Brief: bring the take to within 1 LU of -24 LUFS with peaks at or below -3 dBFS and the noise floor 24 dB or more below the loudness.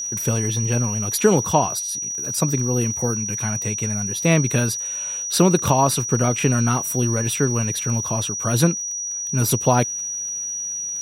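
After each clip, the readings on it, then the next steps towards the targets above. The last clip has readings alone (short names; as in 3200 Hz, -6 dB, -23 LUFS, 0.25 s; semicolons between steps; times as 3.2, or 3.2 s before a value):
ticks 37/s; steady tone 5800 Hz; tone level -25 dBFS; loudness -20.5 LUFS; peak -3.0 dBFS; loudness target -24.0 LUFS
-> de-click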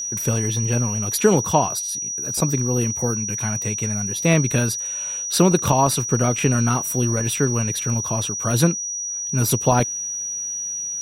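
ticks 0.64/s; steady tone 5800 Hz; tone level -25 dBFS
-> notch 5800 Hz, Q 30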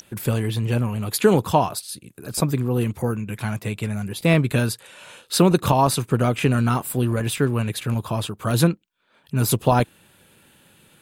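steady tone none; loudness -22.0 LUFS; peak -4.0 dBFS; loudness target -24.0 LUFS
-> gain -2 dB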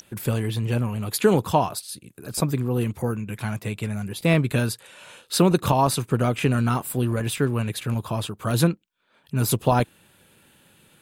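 loudness -24.0 LUFS; peak -6.0 dBFS; noise floor -61 dBFS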